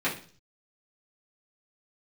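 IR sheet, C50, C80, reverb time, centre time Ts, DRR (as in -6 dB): 9.5 dB, 15.0 dB, 0.45 s, 22 ms, -9.0 dB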